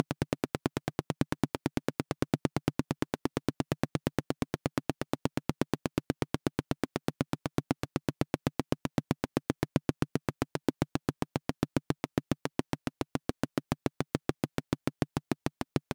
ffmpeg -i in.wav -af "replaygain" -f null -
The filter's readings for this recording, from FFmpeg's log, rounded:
track_gain = +14.4 dB
track_peak = 0.200